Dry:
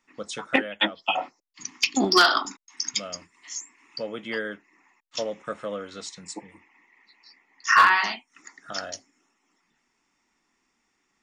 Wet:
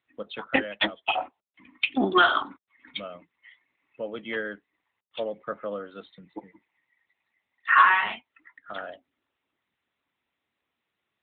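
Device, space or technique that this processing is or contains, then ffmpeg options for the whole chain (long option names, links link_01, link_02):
mobile call with aggressive noise cancelling: -af "highpass=frequency=150:poles=1,afftdn=noise_reduction=16:noise_floor=-46" -ar 8000 -c:a libopencore_amrnb -b:a 12200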